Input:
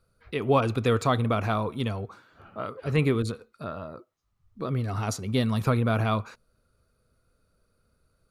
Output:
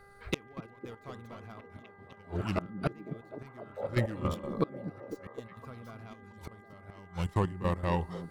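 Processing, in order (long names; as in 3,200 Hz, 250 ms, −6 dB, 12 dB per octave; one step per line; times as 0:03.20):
stylus tracing distortion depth 0.098 ms
delay with pitch and tempo change per echo 108 ms, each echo −2 semitones, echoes 2, each echo −6 dB
gate with flip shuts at −23 dBFS, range −31 dB
healed spectral selection 0:03.80–0:04.18, 400–910 Hz after
gate pattern "xxxxx.x..x.x" 159 BPM −12 dB
on a send: echo through a band-pass that steps 253 ms, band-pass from 200 Hz, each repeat 0.7 octaves, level −5 dB
on the sum: hum with harmonics 400 Hz, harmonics 5, −65 dBFS −1 dB per octave
level +7 dB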